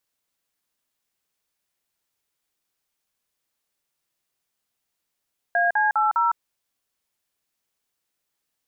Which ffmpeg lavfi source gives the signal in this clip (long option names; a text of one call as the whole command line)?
ffmpeg -f lavfi -i "aevalsrc='0.1*clip(min(mod(t,0.203),0.157-mod(t,0.203))/0.002,0,1)*(eq(floor(t/0.203),0)*(sin(2*PI*697*mod(t,0.203))+sin(2*PI*1633*mod(t,0.203)))+eq(floor(t/0.203),1)*(sin(2*PI*852*mod(t,0.203))+sin(2*PI*1633*mod(t,0.203)))+eq(floor(t/0.203),2)*(sin(2*PI*852*mod(t,0.203))+sin(2*PI*1336*mod(t,0.203)))+eq(floor(t/0.203),3)*(sin(2*PI*941*mod(t,0.203))+sin(2*PI*1336*mod(t,0.203))))':duration=0.812:sample_rate=44100" out.wav